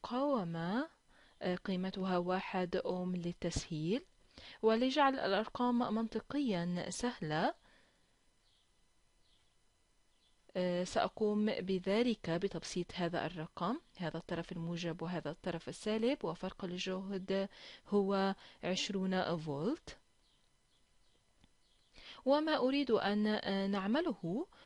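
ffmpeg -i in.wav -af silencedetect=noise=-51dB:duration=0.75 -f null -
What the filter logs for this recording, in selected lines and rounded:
silence_start: 7.52
silence_end: 10.49 | silence_duration: 2.98
silence_start: 19.94
silence_end: 21.44 | silence_duration: 1.50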